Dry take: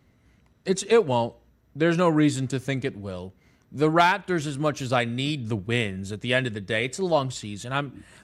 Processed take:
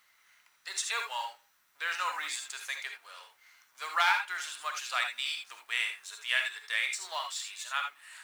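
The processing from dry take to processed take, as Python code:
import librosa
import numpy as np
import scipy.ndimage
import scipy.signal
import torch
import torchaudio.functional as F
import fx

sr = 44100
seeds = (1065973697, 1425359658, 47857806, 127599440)

y = fx.law_mismatch(x, sr, coded='mu')
y = scipy.signal.sosfilt(scipy.signal.butter(4, 1100.0, 'highpass', fs=sr, output='sos'), y)
y = fx.rev_gated(y, sr, seeds[0], gate_ms=100, shape='rising', drr_db=4.0)
y = fx.quant_dither(y, sr, seeds[1], bits=12, dither='triangular')
y = y * librosa.db_to_amplitude(-3.5)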